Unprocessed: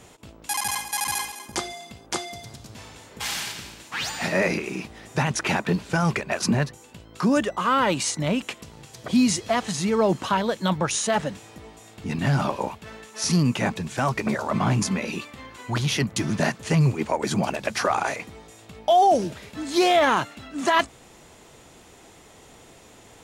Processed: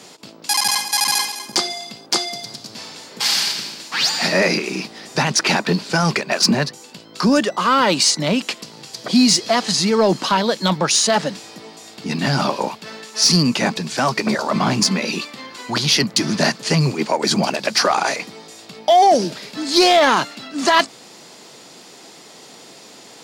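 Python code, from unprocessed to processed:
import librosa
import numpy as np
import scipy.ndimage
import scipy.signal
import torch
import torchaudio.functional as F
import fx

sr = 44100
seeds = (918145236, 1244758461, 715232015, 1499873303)

y = scipy.signal.sosfilt(scipy.signal.butter(4, 160.0, 'highpass', fs=sr, output='sos'), x)
y = fx.peak_eq(y, sr, hz=4700.0, db=12.5, octaves=0.58)
y = 10.0 ** (-9.5 / 20.0) * np.tanh(y / 10.0 ** (-9.5 / 20.0))
y = y * 10.0 ** (6.0 / 20.0)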